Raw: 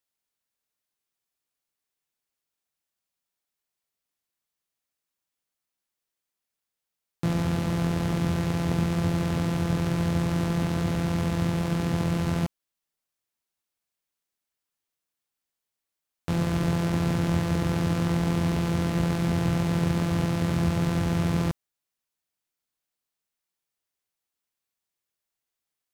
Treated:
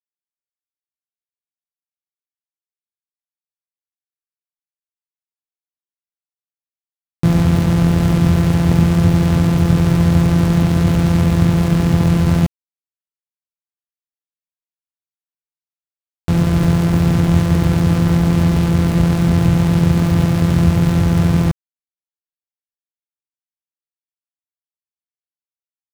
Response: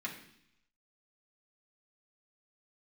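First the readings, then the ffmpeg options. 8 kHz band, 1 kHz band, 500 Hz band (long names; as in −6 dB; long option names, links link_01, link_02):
+8.0 dB, +7.5 dB, +8.0 dB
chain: -af "lowshelf=frequency=190:gain=10,dynaudnorm=framelen=590:gausssize=13:maxgain=11.5dB,aeval=exprs='val(0)*gte(abs(val(0)),0.0708)':channel_layout=same"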